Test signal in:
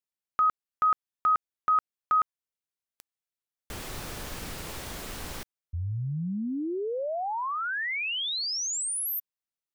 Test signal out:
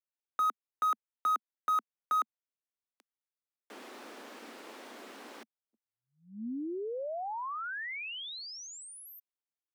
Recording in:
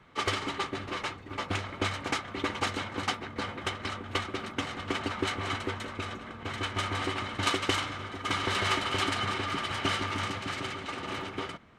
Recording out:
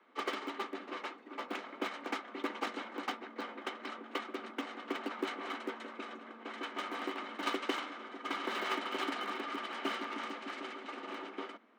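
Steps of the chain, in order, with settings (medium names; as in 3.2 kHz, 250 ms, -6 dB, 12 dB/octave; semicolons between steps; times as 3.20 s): low-pass 2.2 kHz 6 dB/octave; in parallel at -4 dB: Schmitt trigger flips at -24.5 dBFS; on the sum: steep high-pass 220 Hz 72 dB/octave; trim -5.5 dB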